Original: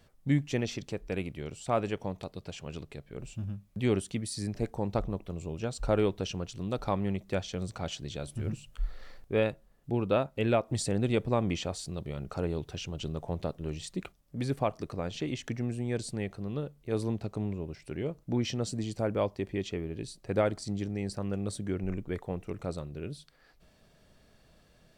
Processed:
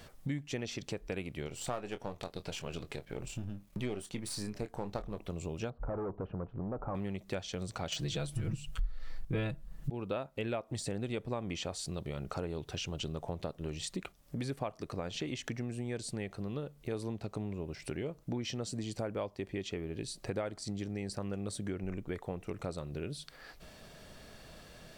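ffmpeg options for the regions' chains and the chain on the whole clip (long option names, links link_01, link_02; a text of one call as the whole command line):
ffmpeg -i in.wav -filter_complex "[0:a]asettb=1/sr,asplit=3[link_01][link_02][link_03];[link_01]atrim=end=1.474[link_04];[link_02]atrim=start=1.47:end=5.18,asetpts=PTS-STARTPTS,afade=type=in:duration=0.004:curve=qsin,afade=type=out:start_time=3.706:duration=0.004:curve=qsin,aeval=exprs='if(lt(val(0),0),0.447*val(0),val(0))':channel_layout=same,asplit=2[link_05][link_06];[link_06]adelay=24,volume=-11dB[link_07];[link_05][link_07]amix=inputs=2:normalize=0,atrim=end_sample=163611[link_08];[link_03]atrim=start=5.176[link_09];[link_04][link_08]acrossfade=duration=0.004:curve1=hsin:curve2=qsin[link_10];[link_10][link_09]acrossfade=duration=0.004:curve1=qsin:curve2=hsin,asettb=1/sr,asplit=3[link_11][link_12][link_13];[link_11]atrim=end=5.704[link_14];[link_12]atrim=start=5.7:end=6.95,asetpts=PTS-STARTPTS,afade=type=in:duration=0.004:curve=qsin,afade=type=out:start_time=1.246:duration=0.004:curve=qsin,asoftclip=type=hard:threshold=-32dB,lowpass=frequency=1200:width=0.5412,lowpass=frequency=1200:width=1.3066[link_15];[link_13]atrim=start=6.946[link_16];[link_14][link_15]acrossfade=duration=0.004:curve1=hsin:curve2=qsin[link_17];[link_17][link_16]acrossfade=duration=0.004:curve1=qsin:curve2=hsin,asettb=1/sr,asplit=3[link_18][link_19][link_20];[link_18]atrim=end=7.924[link_21];[link_19]atrim=start=7.92:end=9.9,asetpts=PTS-STARTPTS,afade=type=in:duration=0.004:curve=qsin,afade=type=out:start_time=1.976:duration=0.004:curve=qsin,acontrast=64,aecho=1:1:6.2:0.96,atrim=end_sample=87318,asubboost=boost=10:cutoff=190[link_22];[link_20]atrim=start=9.896[link_23];[link_21][link_22]acrossfade=duration=0.004:curve1=hsin:curve2=qsin[link_24];[link_24][link_23]acrossfade=duration=0.004:curve1=qsin:curve2=hsin,deesser=0.75,lowshelf=frequency=390:gain=-4.5,acompressor=threshold=-49dB:ratio=4,volume=11.5dB" out.wav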